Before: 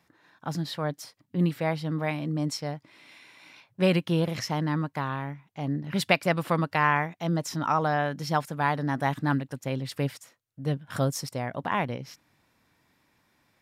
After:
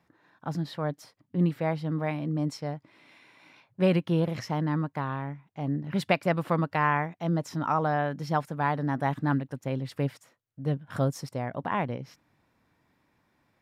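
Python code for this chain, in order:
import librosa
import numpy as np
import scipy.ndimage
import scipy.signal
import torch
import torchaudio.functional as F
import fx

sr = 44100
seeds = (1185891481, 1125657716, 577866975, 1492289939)

y = fx.high_shelf(x, sr, hz=2400.0, db=-10.0)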